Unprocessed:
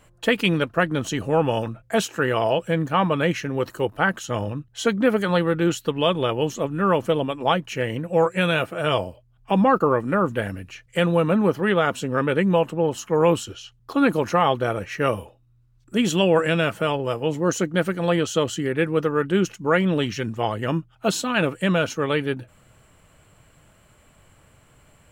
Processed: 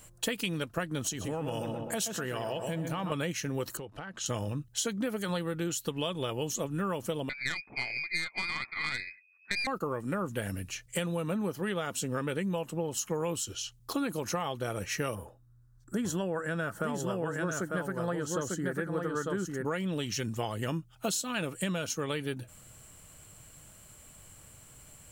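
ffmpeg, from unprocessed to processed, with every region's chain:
ffmpeg -i in.wav -filter_complex "[0:a]asettb=1/sr,asplit=3[link_01][link_02][link_03];[link_01]atrim=end=1.024[link_04];[link_02]atrim=start=1.02:end=3.12,asetpts=PTS-STARTPTS,afade=type=in:duration=0.004:curve=qsin,afade=type=out:start_time=2.096:duration=0.004:curve=qsin,asplit=2[link_05][link_06];[link_06]adelay=127,lowpass=frequency=2000:poles=1,volume=-8dB,asplit=2[link_07][link_08];[link_08]adelay=127,lowpass=frequency=2000:poles=1,volume=0.51,asplit=2[link_09][link_10];[link_10]adelay=127,lowpass=frequency=2000:poles=1,volume=0.51,asplit=2[link_11][link_12];[link_12]adelay=127,lowpass=frequency=2000:poles=1,volume=0.51,asplit=2[link_13][link_14];[link_14]adelay=127,lowpass=frequency=2000:poles=1,volume=0.51,asplit=2[link_15][link_16];[link_16]adelay=127,lowpass=frequency=2000:poles=1,volume=0.51[link_17];[link_05][link_07][link_09][link_11][link_13][link_15][link_17]amix=inputs=7:normalize=0,atrim=end_sample=92610,acompressor=threshold=-28dB:ratio=3:attack=3.2:release=140:knee=1:detection=peak[link_18];[link_03]atrim=start=3.116[link_19];[link_04][link_18]acrossfade=duration=0.004:curve1=hsin:curve2=qsin[link_20];[link_20][link_19]acrossfade=duration=0.004:curve1=qsin:curve2=hsin,asettb=1/sr,asplit=3[link_21][link_22][link_23];[link_21]atrim=end=3.774[link_24];[link_22]atrim=start=3.77:end=4.26,asetpts=PTS-STARTPTS,afade=type=in:duration=0.004:curve=qsin,afade=type=out:start_time=0.486:duration=0.004:curve=qsin,lowpass=4400,acompressor=threshold=-35dB:ratio=8:attack=3.2:release=140:knee=1:detection=peak[link_25];[link_23]atrim=start=4.256[link_26];[link_24][link_25]acrossfade=duration=0.004:curve1=hsin:curve2=qsin[link_27];[link_27][link_26]acrossfade=duration=0.004:curve1=qsin:curve2=hsin,asettb=1/sr,asplit=3[link_28][link_29][link_30];[link_28]atrim=end=7.294[link_31];[link_29]atrim=start=7.29:end=9.67,asetpts=PTS-STARTPTS,afade=type=in:duration=0.004:curve=qsin,afade=type=out:start_time=2.376:duration=0.004:curve=qsin,lowpass=frequency=2200:width_type=q:width=0.5098,lowpass=frequency=2200:width_type=q:width=0.6013,lowpass=frequency=2200:width_type=q:width=0.9,lowpass=frequency=2200:width_type=q:width=2.563,afreqshift=-2600,aeval=exprs='(tanh(4.47*val(0)+0.75)-tanh(0.75))/4.47':channel_layout=same[link_32];[link_30]atrim=start=9.666[link_33];[link_31][link_32]acrossfade=duration=0.004:curve1=hsin:curve2=qsin[link_34];[link_34][link_33]acrossfade=duration=0.004:curve1=qsin:curve2=hsin,asettb=1/sr,asplit=3[link_35][link_36][link_37];[link_35]atrim=end=15.154[link_38];[link_36]atrim=start=15.15:end=19.65,asetpts=PTS-STARTPTS,afade=type=in:duration=0.004:curve=qsin,afade=type=out:start_time=4.496:duration=0.004:curve=qsin,highshelf=frequency=2000:width_type=q:width=3:gain=-7.5,aecho=1:1:898:0.668,atrim=end_sample=198450[link_39];[link_37]atrim=start=19.646[link_40];[link_38][link_39]acrossfade=duration=0.004:curve1=hsin:curve2=qsin[link_41];[link_41][link_40]acrossfade=duration=0.004:curve1=qsin:curve2=hsin,bass=frequency=250:gain=3,treble=frequency=4000:gain=15,acompressor=threshold=-25dB:ratio=10,volume=-4dB" out.wav

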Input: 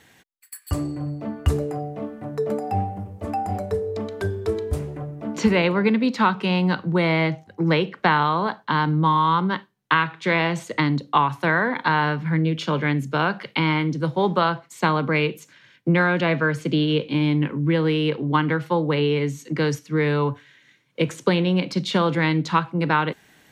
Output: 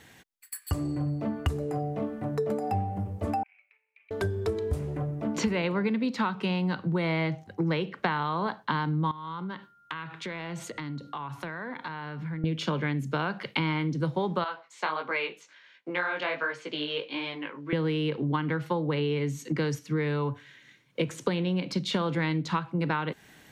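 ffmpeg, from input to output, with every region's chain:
ffmpeg -i in.wav -filter_complex "[0:a]asettb=1/sr,asplit=3[link_01][link_02][link_03];[link_01]atrim=end=3.434[link_04];[link_02]atrim=start=3.43:end=4.11,asetpts=PTS-STARTPTS,afade=type=in:duration=0.004:curve=qsin,afade=type=out:start_time=0.676:duration=0.004:curve=qsin,aeval=exprs='(tanh(10*val(0)+0.55)-tanh(0.55))/10':channel_layout=same,asuperpass=centerf=2400:order=4:qfactor=5.8[link_05];[link_03]atrim=start=4.106[link_06];[link_04][link_05]acrossfade=duration=0.004:curve1=hsin:curve2=qsin[link_07];[link_07][link_06]acrossfade=duration=0.004:curve1=qsin:curve2=hsin,asettb=1/sr,asplit=3[link_08][link_09][link_10];[link_08]atrim=end=9.114[link_11];[link_09]atrim=start=9.11:end=12.44,asetpts=PTS-STARTPTS,afade=type=in:duration=0.004:curve=qsin,afade=type=out:start_time=3.326:duration=0.004:curve=qsin,acompressor=threshold=-35dB:ratio=5:attack=3.2:release=140:knee=1:detection=peak,aeval=exprs='val(0)+0.00126*sin(2*PI*1400*n/s)':channel_layout=same[link_12];[link_10]atrim=start=12.436[link_13];[link_11][link_12]acrossfade=duration=0.004:curve1=hsin:curve2=qsin[link_14];[link_14][link_13]acrossfade=duration=0.004:curve1=qsin:curve2=hsin,asettb=1/sr,asplit=3[link_15][link_16][link_17];[link_15]atrim=end=14.444[link_18];[link_16]atrim=start=14.44:end=17.73,asetpts=PTS-STARTPTS,afade=type=in:duration=0.004:curve=qsin,afade=type=out:start_time=3.286:duration=0.004:curve=qsin,flanger=delay=15:depth=6.3:speed=1.4,highpass=610,lowpass=5200[link_19];[link_17]atrim=start=17.726[link_20];[link_18][link_19]acrossfade=duration=0.004:curve1=hsin:curve2=qsin[link_21];[link_21][link_20]acrossfade=duration=0.004:curve1=qsin:curve2=hsin,lowshelf=frequency=160:gain=3.5,acompressor=threshold=-26dB:ratio=4" out.wav

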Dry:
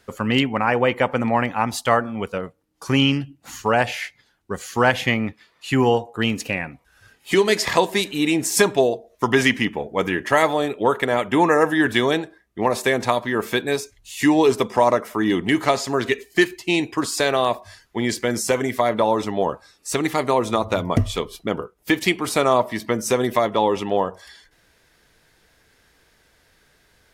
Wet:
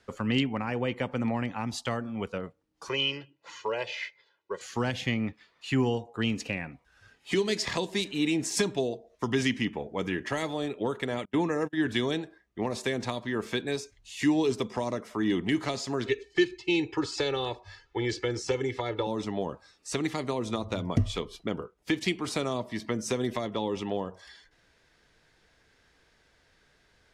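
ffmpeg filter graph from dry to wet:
ffmpeg -i in.wav -filter_complex "[0:a]asettb=1/sr,asplit=3[link_01][link_02][link_03];[link_01]atrim=end=2.894[link_04];[link_02]atrim=start=2.89:end=4.61,asetpts=PTS-STARTPTS,afade=type=in:duration=0.004:curve=qsin,afade=type=out:start_time=1.716:duration=0.004:curve=qsin,highpass=350,lowpass=4300,bandreject=frequency=1500:width=12,aecho=1:1:2:0.86,atrim=end_sample=75852[link_05];[link_03]atrim=start=4.606[link_06];[link_04][link_05]acrossfade=duration=0.004:curve1=hsin:curve2=qsin[link_07];[link_07][link_06]acrossfade=duration=0.004:curve1=qsin:curve2=hsin,asettb=1/sr,asplit=3[link_08][link_09][link_10];[link_08]atrim=end=11.254[link_11];[link_09]atrim=start=11.25:end=11.88,asetpts=PTS-STARTPTS,afade=type=in:duration=0.004:curve=qsin,afade=type=out:start_time=0.626:duration=0.004:curve=qsin,agate=range=-35dB:threshold=-21dB:ratio=16:release=100:detection=peak,highshelf=frequency=8900:gain=-8.5[link_12];[link_10]atrim=start=11.876[link_13];[link_11][link_12]acrossfade=duration=0.004:curve1=hsin:curve2=qsin[link_14];[link_14][link_13]acrossfade=duration=0.004:curve1=qsin:curve2=hsin,asettb=1/sr,asplit=3[link_15][link_16][link_17];[link_15]atrim=end=16.064[link_18];[link_16]atrim=start=16.06:end=19.07,asetpts=PTS-STARTPTS,afade=type=in:duration=0.004:curve=qsin,afade=type=out:start_time=3.006:duration=0.004:curve=qsin,lowpass=4800,aecho=1:1:2.3:0.91,atrim=end_sample=132741[link_19];[link_17]atrim=start=19.066[link_20];[link_18][link_19]acrossfade=duration=0.004:curve1=hsin:curve2=qsin[link_21];[link_21][link_20]acrossfade=duration=0.004:curve1=qsin:curve2=hsin,lowpass=6800,acrossover=split=360|3000[link_22][link_23][link_24];[link_23]acompressor=threshold=-28dB:ratio=6[link_25];[link_22][link_25][link_24]amix=inputs=3:normalize=0,volume=-5.5dB" out.wav

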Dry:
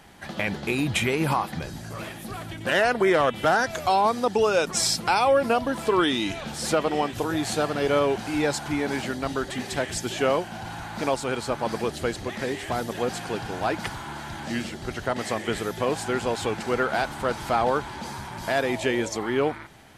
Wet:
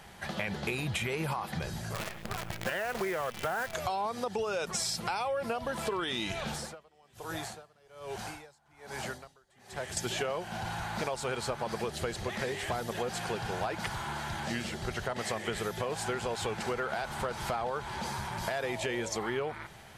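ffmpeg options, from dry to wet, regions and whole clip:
ffmpeg -i in.wav -filter_complex "[0:a]asettb=1/sr,asplit=3[link_01][link_02][link_03];[link_01]atrim=end=1.944[link_04];[link_02]atrim=start=1.94:end=3.74,asetpts=PTS-STARTPTS,afade=type=in:duration=0.004:curve=qsin,afade=type=out:start_time=1.796:duration=0.004:curve=qsin,lowpass=frequency=2800:width=0.5412,lowpass=frequency=2800:width=1.3066,aemphasis=mode=production:type=50fm,acrusher=bits=6:dc=4:mix=0:aa=0.000001[link_05];[link_03]atrim=start=3.736[link_06];[link_04][link_05]acrossfade=duration=0.004:curve1=hsin:curve2=qsin[link_07];[link_07][link_06]acrossfade=duration=0.004:curve1=qsin:curve2=hsin,asettb=1/sr,asplit=3[link_08][link_09][link_10];[link_08]atrim=end=6.544[link_11];[link_09]atrim=start=6.54:end=9.97,asetpts=PTS-STARTPTS,afade=type=in:duration=0.004:curve=qsin,afade=type=out:start_time=3.426:duration=0.004:curve=qsin,acrossover=split=110|530|1800|4600[link_12][link_13][link_14][link_15][link_16];[link_12]acompressor=threshold=-49dB:ratio=3[link_17];[link_13]acompressor=threshold=-40dB:ratio=3[link_18];[link_14]acompressor=threshold=-36dB:ratio=3[link_19];[link_15]acompressor=threshold=-52dB:ratio=3[link_20];[link_16]acompressor=threshold=-43dB:ratio=3[link_21];[link_17][link_18][link_19][link_20][link_21]amix=inputs=5:normalize=0,aeval=exprs='val(0)*pow(10,-30*(0.5-0.5*cos(2*PI*1.2*n/s))/20)':channel_layout=same[link_22];[link_10]atrim=start=9.966[link_23];[link_11][link_22]acrossfade=duration=0.004:curve1=hsin:curve2=qsin[link_24];[link_24][link_23]acrossfade=duration=0.004:curve1=qsin:curve2=hsin,equalizer=frequency=280:width_type=o:width=0.3:gain=-14.5,alimiter=limit=-16.5dB:level=0:latency=1,acompressor=threshold=-30dB:ratio=6" out.wav

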